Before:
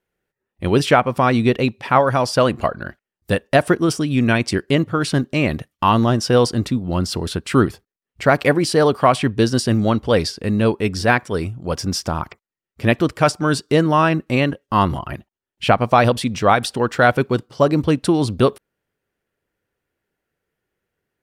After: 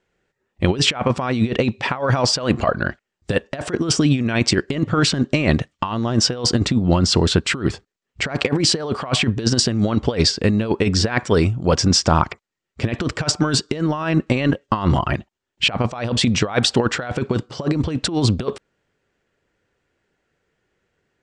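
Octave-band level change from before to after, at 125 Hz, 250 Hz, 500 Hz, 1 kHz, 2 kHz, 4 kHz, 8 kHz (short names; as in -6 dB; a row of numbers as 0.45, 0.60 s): +0.5, -1.0, -4.5, -6.5, -2.5, +6.0, +6.0 dB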